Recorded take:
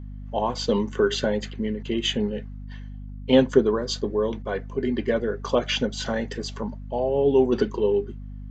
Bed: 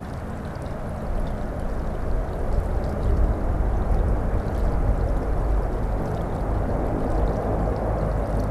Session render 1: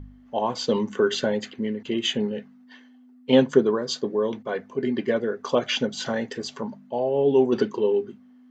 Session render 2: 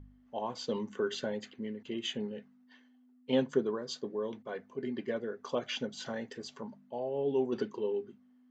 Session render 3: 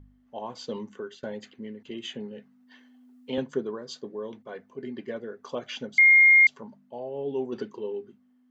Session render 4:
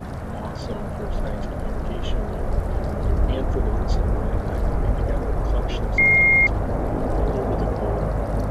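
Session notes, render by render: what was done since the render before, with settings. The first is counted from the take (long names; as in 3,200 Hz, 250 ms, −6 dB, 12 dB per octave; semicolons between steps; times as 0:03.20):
hum removal 50 Hz, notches 4
level −11.5 dB
0:00.83–0:01.23: fade out, to −17.5 dB; 0:01.90–0:03.38: multiband upward and downward compressor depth 40%; 0:05.98–0:06.47: beep over 2,130 Hz −12.5 dBFS
mix in bed +0.5 dB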